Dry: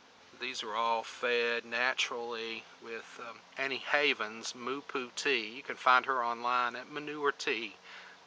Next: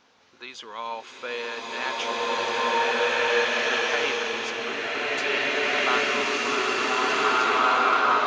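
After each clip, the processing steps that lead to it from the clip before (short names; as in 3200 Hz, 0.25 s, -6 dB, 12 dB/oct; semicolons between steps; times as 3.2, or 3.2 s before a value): bloom reverb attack 2.01 s, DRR -11.5 dB; gain -2 dB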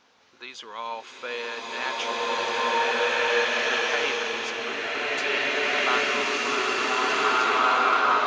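low shelf 340 Hz -3 dB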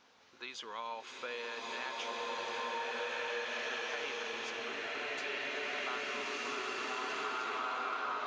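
compressor 3:1, threshold -35 dBFS, peak gain reduction 13 dB; gain -4 dB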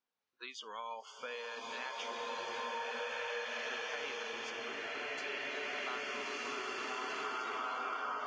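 spectral noise reduction 26 dB; gain -1.5 dB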